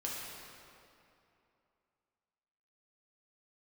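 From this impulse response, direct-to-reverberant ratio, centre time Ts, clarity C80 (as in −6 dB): −5.0 dB, 142 ms, 0.0 dB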